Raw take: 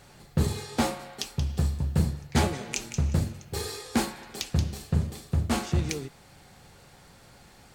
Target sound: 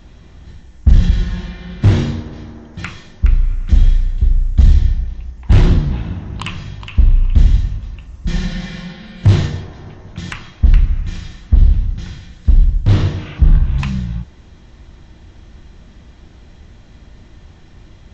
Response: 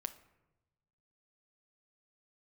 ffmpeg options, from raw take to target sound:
-af "asoftclip=type=hard:threshold=-18dB,asetrate=18846,aresample=44100,bass=f=250:g=13,treble=f=4k:g=3,volume=3.5dB"

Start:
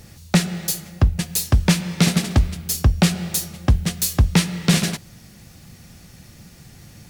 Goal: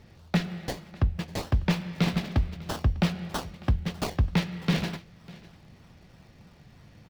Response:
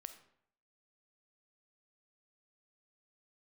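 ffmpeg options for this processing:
-filter_complex "[0:a]aecho=1:1:599:0.0891,acrossover=split=4700[a][b];[b]acrusher=samples=27:mix=1:aa=0.000001:lfo=1:lforange=16.2:lforate=3.2[c];[a][c]amix=inputs=2:normalize=0,volume=-8.5dB"

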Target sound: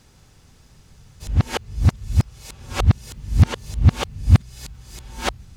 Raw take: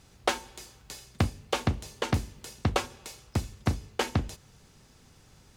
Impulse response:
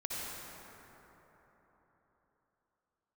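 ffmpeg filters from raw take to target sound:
-af "areverse,asubboost=boost=6:cutoff=170,volume=3.5dB"

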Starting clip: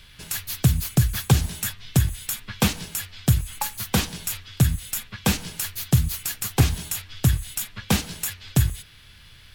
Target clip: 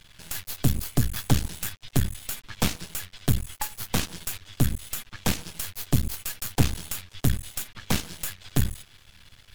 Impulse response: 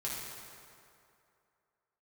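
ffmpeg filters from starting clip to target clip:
-af "aeval=exprs='max(val(0),0)':c=same"

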